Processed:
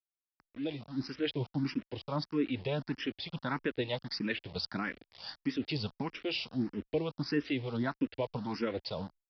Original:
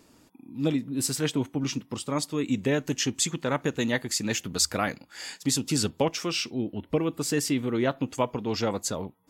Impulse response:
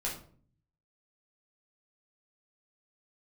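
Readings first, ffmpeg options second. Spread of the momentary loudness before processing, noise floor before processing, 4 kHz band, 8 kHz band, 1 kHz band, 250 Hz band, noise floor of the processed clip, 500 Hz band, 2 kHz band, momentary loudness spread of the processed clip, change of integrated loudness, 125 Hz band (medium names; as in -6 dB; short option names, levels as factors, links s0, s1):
6 LU, -59 dBFS, -8.0 dB, under -30 dB, -8.0 dB, -6.5 dB, under -85 dBFS, -7.5 dB, -6.0 dB, 6 LU, -8.0 dB, -6.5 dB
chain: -filter_complex "[0:a]alimiter=limit=0.158:level=0:latency=1:release=156,acrossover=split=560[s0][s1];[s0]aeval=exprs='val(0)*(1-0.5/2+0.5/2*cos(2*PI*5*n/s))':c=same[s2];[s1]aeval=exprs='val(0)*(1-0.5/2-0.5/2*cos(2*PI*5*n/s))':c=same[s3];[s2][s3]amix=inputs=2:normalize=0,dynaudnorm=f=700:g=3:m=1.68,bandreject=f=1200:w=11,aresample=11025,aeval=exprs='val(0)*gte(abs(val(0)),0.0119)':c=same,aresample=44100,asplit=2[s4][s5];[s5]afreqshift=1.6[s6];[s4][s6]amix=inputs=2:normalize=1,volume=0.596"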